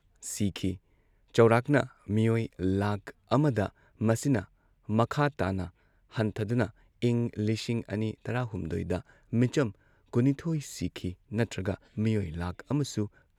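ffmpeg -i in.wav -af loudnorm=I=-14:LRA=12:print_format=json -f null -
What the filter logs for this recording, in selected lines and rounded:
"input_i" : "-30.5",
"input_tp" : "-9.4",
"input_lra" : "4.5",
"input_thresh" : "-40.7",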